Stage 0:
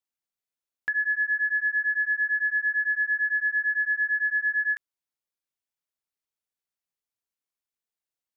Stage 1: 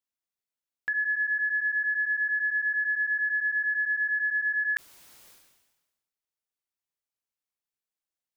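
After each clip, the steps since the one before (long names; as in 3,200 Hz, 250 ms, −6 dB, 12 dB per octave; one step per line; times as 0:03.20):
level that may fall only so fast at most 48 dB per second
level −2.5 dB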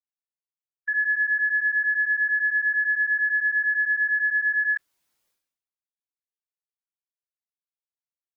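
every bin expanded away from the loudest bin 1.5 to 1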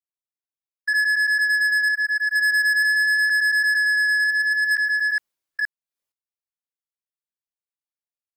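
delay that plays each chunk backwards 471 ms, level −4 dB
leveller curve on the samples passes 3
level −2.5 dB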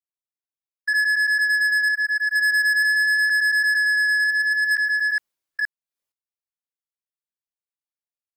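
no processing that can be heard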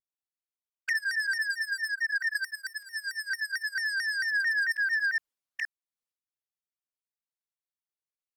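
flanger swept by the level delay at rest 11.4 ms, full sweep at −17.5 dBFS
pitch modulation by a square or saw wave saw down 4.5 Hz, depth 160 cents
level −5 dB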